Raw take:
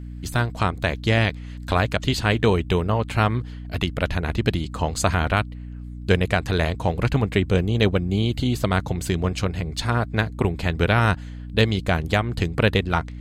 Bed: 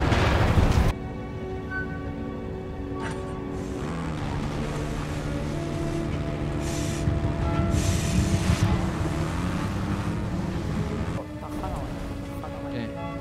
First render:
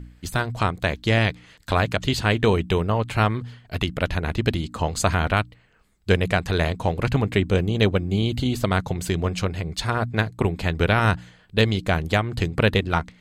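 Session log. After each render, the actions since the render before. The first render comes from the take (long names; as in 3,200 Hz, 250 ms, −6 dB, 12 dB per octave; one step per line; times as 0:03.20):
hum removal 60 Hz, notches 5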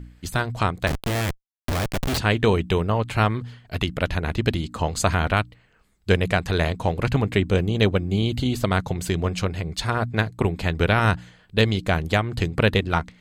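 0:00.87–0:02.18: comparator with hysteresis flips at −27.5 dBFS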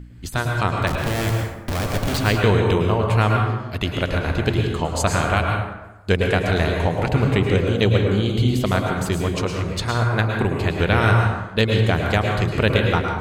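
dense smooth reverb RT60 1.1 s, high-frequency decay 0.55×, pre-delay 95 ms, DRR 1 dB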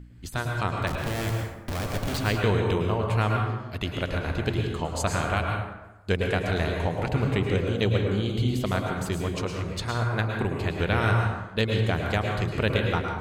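level −6.5 dB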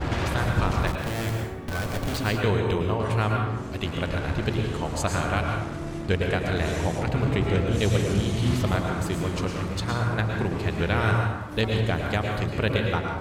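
mix in bed −5 dB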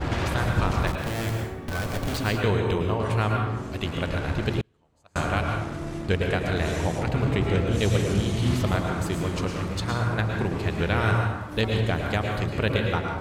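0:04.61–0:05.16: noise gate −19 dBFS, range −37 dB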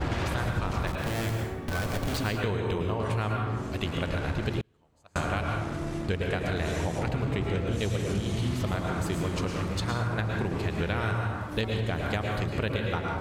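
downward compressor, threshold −25 dBFS, peak gain reduction 8 dB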